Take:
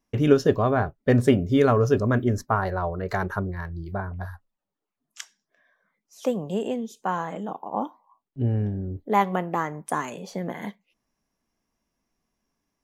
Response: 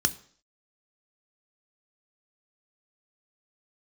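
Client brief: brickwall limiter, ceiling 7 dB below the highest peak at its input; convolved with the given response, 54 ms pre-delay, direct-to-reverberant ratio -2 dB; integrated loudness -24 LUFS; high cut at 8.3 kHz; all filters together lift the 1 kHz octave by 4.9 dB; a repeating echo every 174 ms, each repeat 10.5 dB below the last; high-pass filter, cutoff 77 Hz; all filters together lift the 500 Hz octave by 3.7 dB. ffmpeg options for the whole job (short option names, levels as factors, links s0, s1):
-filter_complex "[0:a]highpass=77,lowpass=8300,equalizer=f=500:t=o:g=3.5,equalizer=f=1000:t=o:g=5,alimiter=limit=0.355:level=0:latency=1,aecho=1:1:174|348|522:0.299|0.0896|0.0269,asplit=2[s0][s1];[1:a]atrim=start_sample=2205,adelay=54[s2];[s1][s2]afir=irnorm=-1:irlink=0,volume=0.473[s3];[s0][s3]amix=inputs=2:normalize=0,volume=0.531"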